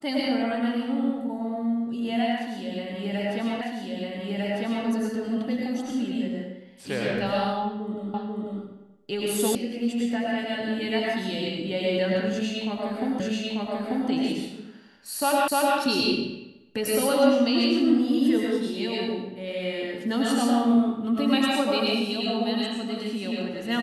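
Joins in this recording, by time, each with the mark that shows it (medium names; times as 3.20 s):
3.61 s: repeat of the last 1.25 s
8.14 s: repeat of the last 0.49 s
9.55 s: sound stops dead
13.20 s: repeat of the last 0.89 s
15.48 s: repeat of the last 0.3 s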